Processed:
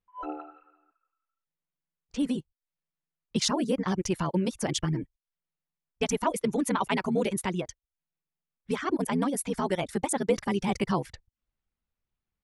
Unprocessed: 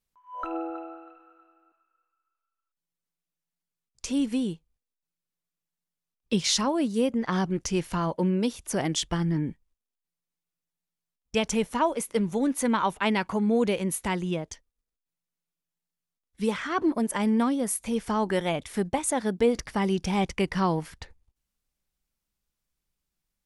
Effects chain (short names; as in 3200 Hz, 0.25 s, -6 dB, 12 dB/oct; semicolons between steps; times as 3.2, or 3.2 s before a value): reverb removal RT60 0.52 s; granular stretch 0.53×, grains 25 ms; low-pass opened by the level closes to 2600 Hz, open at -27.5 dBFS